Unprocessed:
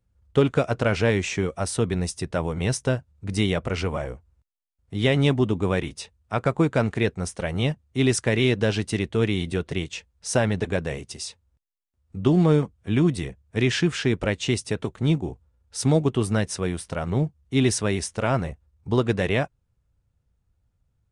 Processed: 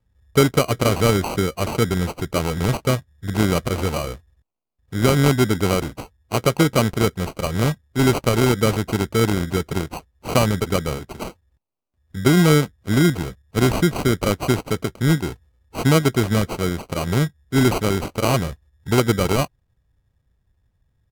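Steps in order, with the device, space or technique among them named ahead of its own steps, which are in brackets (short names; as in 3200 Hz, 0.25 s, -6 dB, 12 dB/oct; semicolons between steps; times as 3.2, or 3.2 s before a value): crushed at another speed (playback speed 1.25×; sample-and-hold 20×; playback speed 0.8×); gain +4 dB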